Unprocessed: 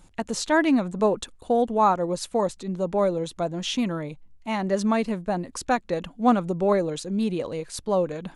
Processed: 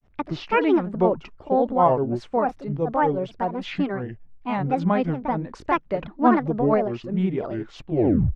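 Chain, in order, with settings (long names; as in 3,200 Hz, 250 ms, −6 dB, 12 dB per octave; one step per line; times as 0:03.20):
turntable brake at the end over 0.64 s
granular cloud 228 ms, grains 11 per second, spray 17 ms, pitch spread up and down by 7 semitones
low-pass filter 2,100 Hz 12 dB per octave
level +4 dB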